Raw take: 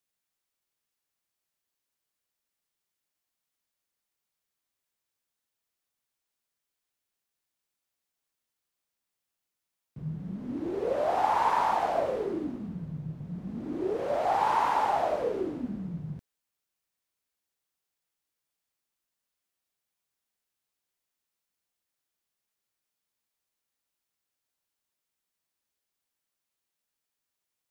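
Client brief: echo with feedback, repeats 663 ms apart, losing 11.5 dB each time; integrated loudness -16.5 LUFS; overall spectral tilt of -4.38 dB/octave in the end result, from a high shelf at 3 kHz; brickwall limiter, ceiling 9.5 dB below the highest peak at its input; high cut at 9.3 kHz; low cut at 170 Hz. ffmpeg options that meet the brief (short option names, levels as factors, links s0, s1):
-af "highpass=170,lowpass=9300,highshelf=f=3000:g=9,alimiter=limit=0.0841:level=0:latency=1,aecho=1:1:663|1326|1989:0.266|0.0718|0.0194,volume=6.31"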